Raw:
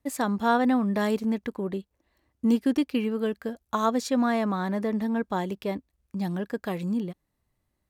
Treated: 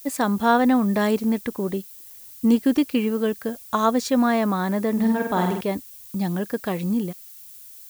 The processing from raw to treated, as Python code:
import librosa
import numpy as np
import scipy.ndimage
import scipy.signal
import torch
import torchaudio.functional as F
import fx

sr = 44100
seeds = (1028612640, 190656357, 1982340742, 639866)

y = fx.room_flutter(x, sr, wall_m=8.5, rt60_s=0.71, at=(4.92, 5.61))
y = fx.dmg_noise_colour(y, sr, seeds[0], colour='violet', level_db=-48.0)
y = y * librosa.db_to_amplitude(4.5)